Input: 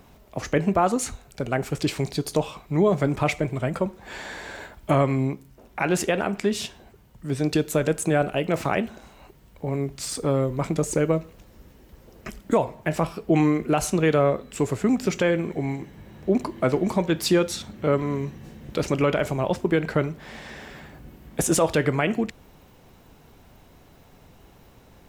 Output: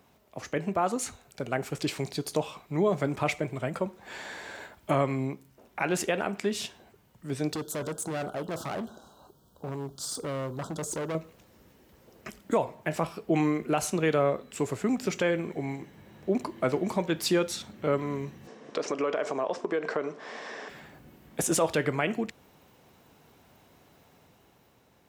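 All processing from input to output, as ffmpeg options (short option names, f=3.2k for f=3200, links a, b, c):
-filter_complex "[0:a]asettb=1/sr,asplit=3[a][b][c];[a]atrim=end=7.534[d];[b]atrim=start=7.53:end=11.15,asetpts=PTS-STARTPTS,afade=t=in:d=0.004:c=qsin,afade=t=out:st=3.616:d=0.004:c=qsin,asuperstop=centerf=2200:order=8:qfactor=1.3,asoftclip=type=hard:threshold=-25dB[e];[c]atrim=start=11.146[f];[d][e]acrossfade=d=0.004:c1=hsin:c2=qsin[g];[g][f]acrossfade=d=0.004:c1=qsin:c2=hsin,asettb=1/sr,asplit=3[h][i][j];[h]atrim=end=18.474[k];[i]atrim=start=18.47:end=20.69,asetpts=PTS-STARTPTS,afade=t=in:d=0.004:c=qsin,afade=t=out:st=2.216:d=0.004:c=qsin,highpass=270,equalizer=f=270:t=q:w=4:g=6,equalizer=f=450:t=q:w=4:g=10,equalizer=f=670:t=q:w=4:g=7,equalizer=f=1.1k:t=q:w=4:g=10,equalizer=f=1.7k:t=q:w=4:g=4,equalizer=f=5.5k:t=q:w=4:g=6,lowpass=f=8.2k:w=0.5412,lowpass=f=8.2k:w=1.3066,acompressor=threshold=-22dB:ratio=3:attack=3.2:release=140:knee=1:detection=peak[l];[j]atrim=start=20.686[m];[k][l]acrossfade=d=0.004:c1=hsin:c2=qsin[n];[n][m]acrossfade=d=0.004:c1=qsin:c2=hsin,highpass=83,lowshelf=f=290:g=-4.5,dynaudnorm=f=130:g=13:m=4dB,volume=-7.5dB"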